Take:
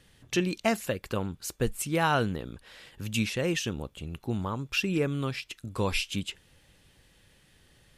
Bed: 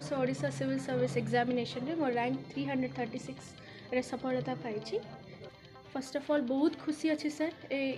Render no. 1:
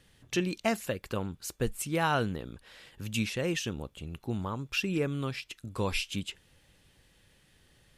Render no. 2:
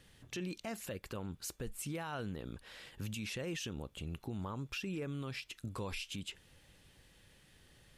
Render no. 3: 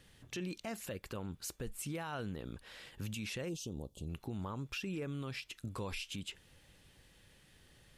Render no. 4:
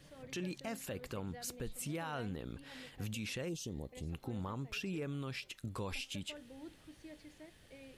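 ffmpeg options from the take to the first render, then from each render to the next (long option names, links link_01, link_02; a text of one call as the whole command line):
ffmpeg -i in.wav -af "volume=-2.5dB" out.wav
ffmpeg -i in.wav -af "acompressor=threshold=-37dB:ratio=2,alimiter=level_in=8dB:limit=-24dB:level=0:latency=1:release=40,volume=-8dB" out.wav
ffmpeg -i in.wav -filter_complex "[0:a]asplit=3[link_01][link_02][link_03];[link_01]afade=type=out:start_time=3.48:duration=0.02[link_04];[link_02]asuperstop=centerf=1800:order=4:qfactor=0.53,afade=type=in:start_time=3.48:duration=0.02,afade=type=out:start_time=4.08:duration=0.02[link_05];[link_03]afade=type=in:start_time=4.08:duration=0.02[link_06];[link_04][link_05][link_06]amix=inputs=3:normalize=0" out.wav
ffmpeg -i in.wav -i bed.wav -filter_complex "[1:a]volume=-22dB[link_01];[0:a][link_01]amix=inputs=2:normalize=0" out.wav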